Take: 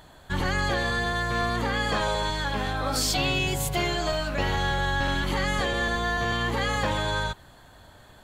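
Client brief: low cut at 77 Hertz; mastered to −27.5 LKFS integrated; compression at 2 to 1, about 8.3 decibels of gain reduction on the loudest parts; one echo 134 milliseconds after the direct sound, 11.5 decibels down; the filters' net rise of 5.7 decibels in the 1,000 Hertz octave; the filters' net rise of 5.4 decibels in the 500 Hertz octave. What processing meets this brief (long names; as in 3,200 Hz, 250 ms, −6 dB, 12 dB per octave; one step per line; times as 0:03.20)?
high-pass filter 77 Hz
parametric band 500 Hz +5 dB
parametric band 1,000 Hz +5.5 dB
downward compressor 2 to 1, threshold −34 dBFS
single-tap delay 134 ms −11.5 dB
level +3 dB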